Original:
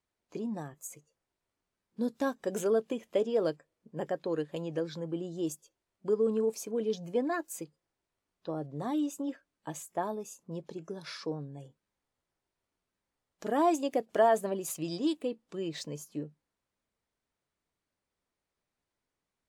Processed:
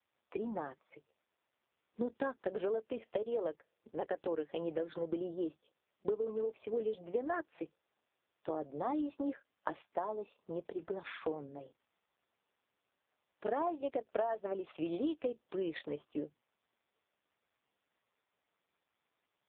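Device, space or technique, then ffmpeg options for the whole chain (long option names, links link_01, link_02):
voicemail: -af "highpass=380,lowpass=3300,acompressor=threshold=-37dB:ratio=10,volume=6dB" -ar 8000 -c:a libopencore_amrnb -b:a 4750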